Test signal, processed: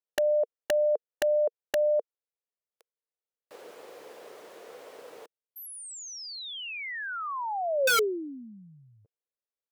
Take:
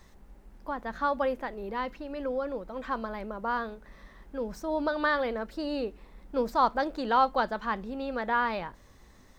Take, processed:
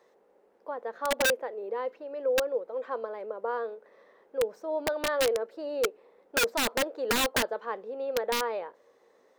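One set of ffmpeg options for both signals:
-af "highpass=f=470:t=q:w=4.9,highshelf=f=3.2k:g=-9,aeval=exprs='(mod(5.01*val(0)+1,2)-1)/5.01':c=same,volume=-5.5dB"

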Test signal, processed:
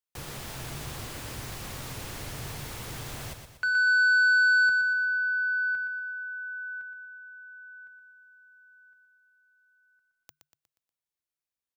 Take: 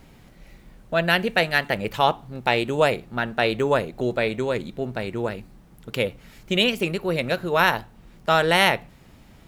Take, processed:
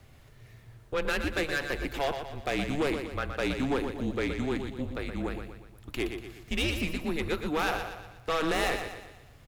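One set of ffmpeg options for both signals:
-af "afreqshift=-150,asoftclip=type=tanh:threshold=-18dB,aecho=1:1:120|240|360|480|600:0.422|0.198|0.0932|0.0438|0.0206,volume=-5dB"

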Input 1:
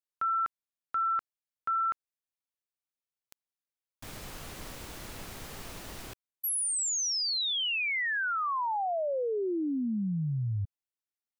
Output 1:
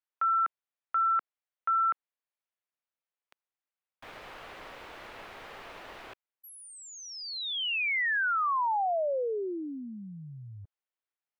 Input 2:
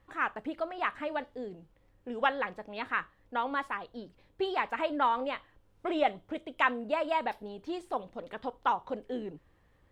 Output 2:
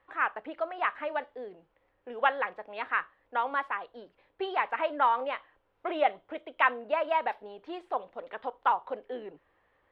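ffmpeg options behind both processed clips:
-filter_complex "[0:a]acrossover=split=400 3300:gain=0.141 1 0.0794[a][b][c];[a][b][c]amix=inputs=3:normalize=0,volume=3dB"

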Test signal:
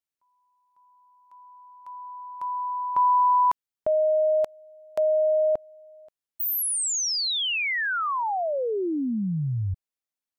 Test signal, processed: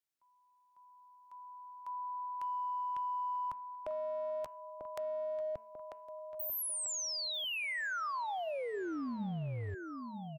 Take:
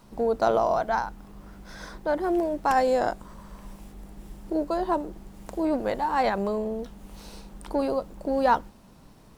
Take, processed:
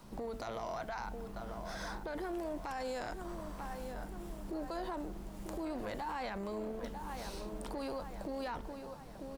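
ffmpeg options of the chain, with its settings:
-filter_complex "[0:a]acrossover=split=180|1300[a][b][c];[a]acompressor=threshold=-41dB:ratio=5[d];[b]acompressor=threshold=-34dB:ratio=4[e];[c]acompressor=threshold=-36dB:ratio=4[f];[d][e][f]amix=inputs=3:normalize=0,asplit=2[g][h];[h]adelay=943,lowpass=f=3.1k:p=1,volume=-12dB,asplit=2[i][j];[j]adelay=943,lowpass=f=3.1k:p=1,volume=0.53,asplit=2[k][l];[l]adelay=943,lowpass=f=3.1k:p=1,volume=0.53,asplit=2[m][n];[n]adelay=943,lowpass=f=3.1k:p=1,volume=0.53,asplit=2[o][p];[p]adelay=943,lowpass=f=3.1k:p=1,volume=0.53,asplit=2[q][r];[r]adelay=943,lowpass=f=3.1k:p=1,volume=0.53[s];[i][k][m][o][q][s]amix=inputs=6:normalize=0[t];[g][t]amix=inputs=2:normalize=0,acompressor=threshold=-34dB:ratio=6:attack=0.33:release=22:knee=1:detection=peak,bandreject=f=222.7:t=h:w=4,bandreject=f=445.4:t=h:w=4,bandreject=f=668.1:t=h:w=4,bandreject=f=890.8:t=h:w=4,bandreject=f=1.1135k:t=h:w=4,bandreject=f=1.3362k:t=h:w=4,bandreject=f=1.5589k:t=h:w=4,bandreject=f=1.7816k:t=h:w=4,bandreject=f=2.0043k:t=h:w=4,bandreject=f=2.227k:t=h:w=4,bandreject=f=2.4497k:t=h:w=4,bandreject=f=2.6724k:t=h:w=4,bandreject=f=2.8951k:t=h:w=4,volume=-1dB"

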